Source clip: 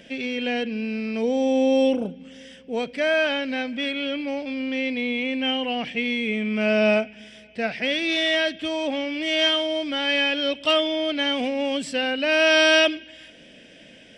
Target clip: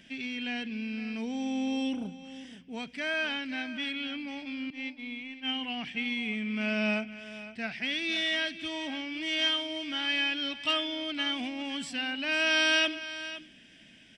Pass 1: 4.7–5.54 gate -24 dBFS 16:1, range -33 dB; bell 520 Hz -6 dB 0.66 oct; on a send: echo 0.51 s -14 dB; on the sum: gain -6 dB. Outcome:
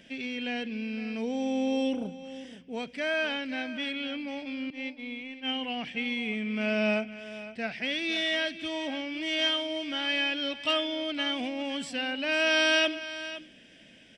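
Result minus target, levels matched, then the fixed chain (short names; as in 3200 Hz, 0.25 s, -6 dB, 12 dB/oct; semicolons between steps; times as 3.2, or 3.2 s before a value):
500 Hz band +5.5 dB
4.7–5.54 gate -24 dBFS 16:1, range -33 dB; bell 520 Hz -16.5 dB 0.66 oct; on a send: echo 0.51 s -14 dB; on the sum: gain -6 dB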